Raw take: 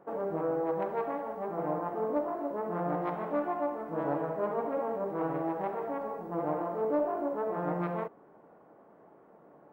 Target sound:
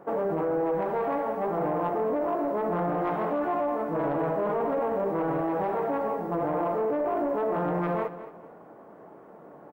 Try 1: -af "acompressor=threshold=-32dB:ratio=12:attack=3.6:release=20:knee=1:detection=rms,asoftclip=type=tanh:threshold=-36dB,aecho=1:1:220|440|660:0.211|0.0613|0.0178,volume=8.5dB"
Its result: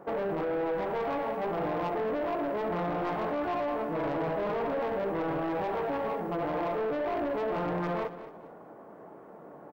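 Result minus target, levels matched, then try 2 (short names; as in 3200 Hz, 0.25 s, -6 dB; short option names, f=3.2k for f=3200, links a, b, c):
soft clip: distortion +13 dB
-af "acompressor=threshold=-32dB:ratio=12:attack=3.6:release=20:knee=1:detection=rms,asoftclip=type=tanh:threshold=-26.5dB,aecho=1:1:220|440|660:0.211|0.0613|0.0178,volume=8.5dB"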